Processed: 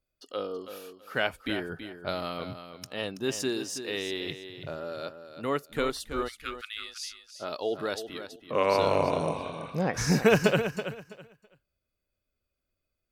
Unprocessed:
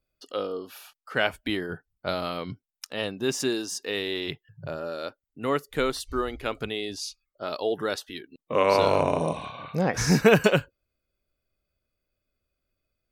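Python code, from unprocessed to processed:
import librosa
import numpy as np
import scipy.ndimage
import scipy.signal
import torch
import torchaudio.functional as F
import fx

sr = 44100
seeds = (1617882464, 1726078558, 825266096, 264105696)

y = fx.brickwall_highpass(x, sr, low_hz=1100.0, at=(6.27, 7.07), fade=0.02)
y = fx.echo_feedback(y, sr, ms=328, feedback_pct=21, wet_db=-10.0)
y = y * 10.0 ** (-3.5 / 20.0)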